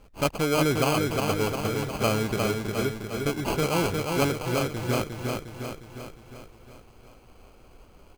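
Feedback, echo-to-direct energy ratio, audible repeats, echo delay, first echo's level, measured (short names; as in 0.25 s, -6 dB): 56%, -2.5 dB, 7, 0.356 s, -4.0 dB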